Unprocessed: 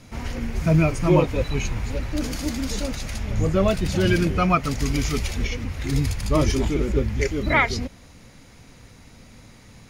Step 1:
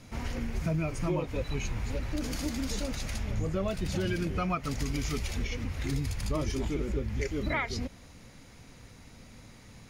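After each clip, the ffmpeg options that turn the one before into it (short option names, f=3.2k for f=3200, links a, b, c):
-af "acompressor=threshold=-24dB:ratio=4,volume=-4dB"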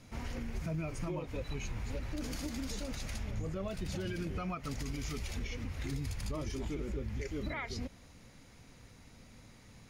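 -af "alimiter=limit=-24dB:level=0:latency=1:release=62,volume=-5dB"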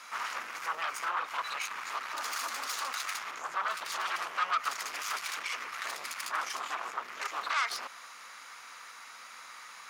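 -af "aeval=exprs='0.0376*sin(PI/2*2.82*val(0)/0.0376)':c=same,highpass=f=1.2k:t=q:w=3.7,volume=-1.5dB"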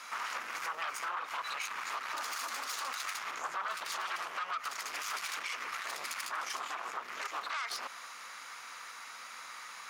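-af "alimiter=level_in=5dB:limit=-24dB:level=0:latency=1:release=148,volume=-5dB,volume=1.5dB"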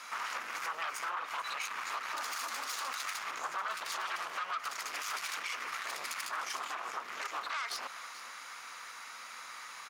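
-af "aecho=1:1:434:0.178"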